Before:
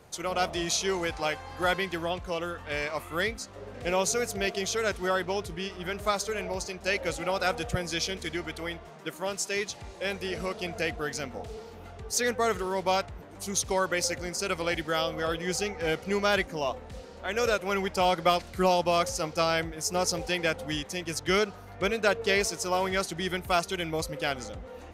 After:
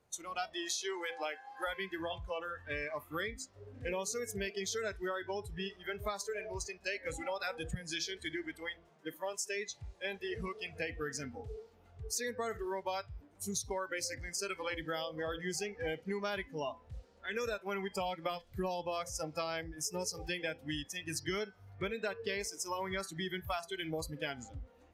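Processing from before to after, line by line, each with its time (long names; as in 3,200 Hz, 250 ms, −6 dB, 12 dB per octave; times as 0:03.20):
0:00.54–0:01.67: high-pass filter 320 Hz
whole clip: hum removal 168.2 Hz, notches 34; noise reduction from a noise print of the clip's start 17 dB; downward compressor 6 to 1, threshold −33 dBFS; level −1.5 dB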